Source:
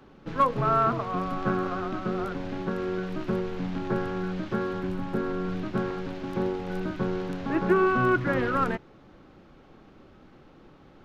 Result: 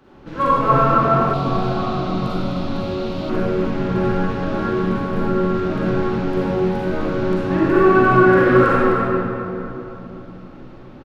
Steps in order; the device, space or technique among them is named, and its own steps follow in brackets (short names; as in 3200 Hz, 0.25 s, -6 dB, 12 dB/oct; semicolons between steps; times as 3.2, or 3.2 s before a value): cave (echo 0.257 s -8.5 dB; reverb RT60 3.3 s, pre-delay 35 ms, DRR -8.5 dB); 1.33–3.3 fifteen-band EQ 400 Hz -5 dB, 1600 Hz -11 dB, 4000 Hz +9 dB